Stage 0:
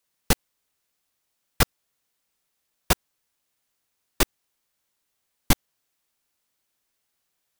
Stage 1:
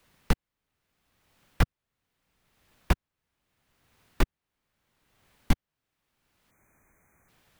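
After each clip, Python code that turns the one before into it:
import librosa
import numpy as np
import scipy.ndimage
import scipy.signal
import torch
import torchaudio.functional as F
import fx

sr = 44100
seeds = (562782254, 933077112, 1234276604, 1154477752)

y = fx.spec_erase(x, sr, start_s=6.51, length_s=0.78, low_hz=2500.0, high_hz=5900.0)
y = fx.bass_treble(y, sr, bass_db=9, treble_db=-12)
y = fx.band_squash(y, sr, depth_pct=70)
y = F.gain(torch.from_numpy(y), -4.0).numpy()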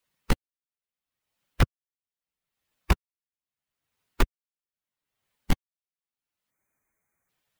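y = fx.bin_expand(x, sr, power=1.5)
y = np.clip(10.0 ** (19.0 / 20.0) * y, -1.0, 1.0) / 10.0 ** (19.0 / 20.0)
y = F.gain(torch.from_numpy(y), 6.0).numpy()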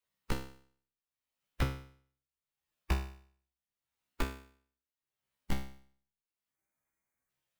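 y = fx.comb_fb(x, sr, f0_hz=66.0, decay_s=0.52, harmonics='all', damping=0.0, mix_pct=90)
y = F.gain(torch.from_numpy(y), 1.0).numpy()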